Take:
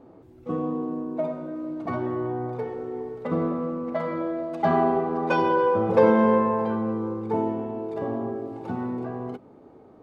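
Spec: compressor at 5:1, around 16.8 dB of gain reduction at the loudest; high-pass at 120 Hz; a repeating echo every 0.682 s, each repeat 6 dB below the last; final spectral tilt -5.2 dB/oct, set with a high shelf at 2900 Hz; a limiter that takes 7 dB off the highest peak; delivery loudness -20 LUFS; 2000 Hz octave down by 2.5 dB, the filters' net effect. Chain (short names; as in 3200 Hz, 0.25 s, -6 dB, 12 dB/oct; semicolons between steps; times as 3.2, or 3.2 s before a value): HPF 120 Hz; bell 2000 Hz -5.5 dB; high shelf 2900 Hz +5 dB; compressor 5:1, threshold -32 dBFS; limiter -27.5 dBFS; feedback echo 0.682 s, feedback 50%, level -6 dB; gain +15 dB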